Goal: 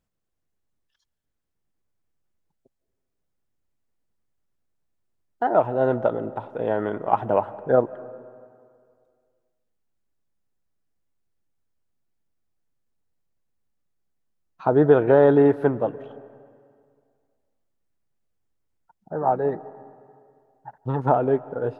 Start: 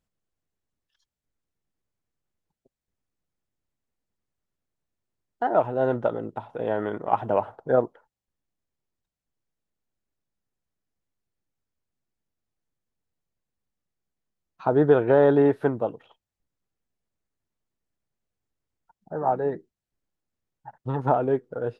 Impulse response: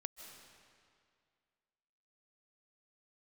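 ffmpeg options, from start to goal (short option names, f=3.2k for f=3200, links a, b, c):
-filter_complex "[0:a]asplit=2[a][b];[1:a]atrim=start_sample=2205,lowpass=2.4k[c];[b][c]afir=irnorm=-1:irlink=0,volume=-5.5dB[d];[a][d]amix=inputs=2:normalize=0"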